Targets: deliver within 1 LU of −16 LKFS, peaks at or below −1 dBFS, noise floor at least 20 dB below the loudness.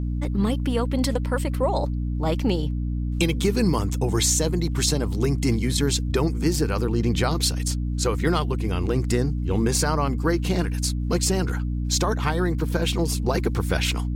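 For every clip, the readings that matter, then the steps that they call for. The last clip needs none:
mains hum 60 Hz; hum harmonics up to 300 Hz; level of the hum −23 dBFS; integrated loudness −23.5 LKFS; sample peak −8.0 dBFS; target loudness −16.0 LKFS
→ hum removal 60 Hz, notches 5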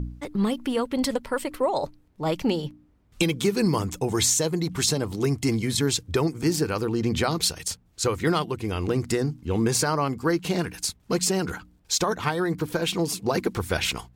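mains hum none found; integrated loudness −25.5 LKFS; sample peak −9.5 dBFS; target loudness −16.0 LKFS
→ level +9.5 dB
brickwall limiter −1 dBFS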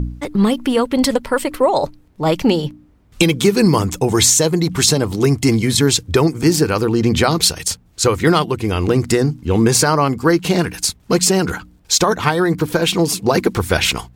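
integrated loudness −16.0 LKFS; sample peak −1.0 dBFS; background noise floor −51 dBFS

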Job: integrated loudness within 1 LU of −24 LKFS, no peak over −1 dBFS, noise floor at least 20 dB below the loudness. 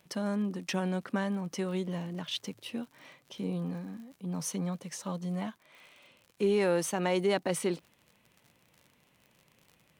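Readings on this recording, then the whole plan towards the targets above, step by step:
crackle rate 58 per second; integrated loudness −33.0 LKFS; sample peak −15.5 dBFS; target loudness −24.0 LKFS
→ click removal
level +9 dB

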